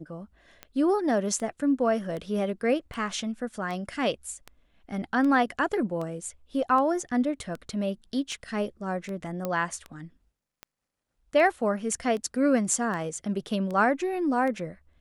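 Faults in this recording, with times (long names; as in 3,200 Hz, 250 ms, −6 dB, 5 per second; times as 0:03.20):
scratch tick 78 rpm −23 dBFS
0:09.45: click −16 dBFS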